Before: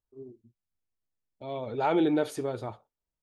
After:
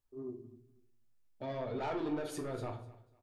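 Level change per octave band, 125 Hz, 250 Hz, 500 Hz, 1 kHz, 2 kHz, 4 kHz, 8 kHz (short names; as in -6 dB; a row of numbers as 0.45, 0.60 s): -3.5, -10.0, -8.5, -9.5, -8.0, -8.0, -3.5 dB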